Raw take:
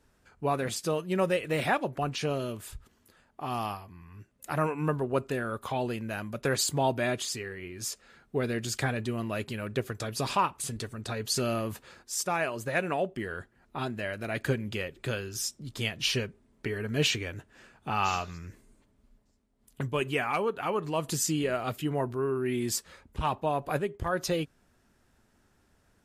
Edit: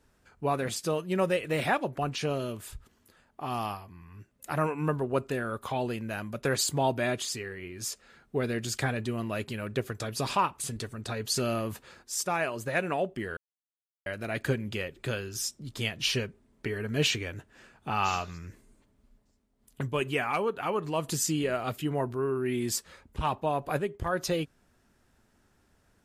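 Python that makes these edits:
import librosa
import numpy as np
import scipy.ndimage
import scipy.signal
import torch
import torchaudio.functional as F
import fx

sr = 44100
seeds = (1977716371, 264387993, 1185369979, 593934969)

y = fx.edit(x, sr, fx.silence(start_s=13.37, length_s=0.69), tone=tone)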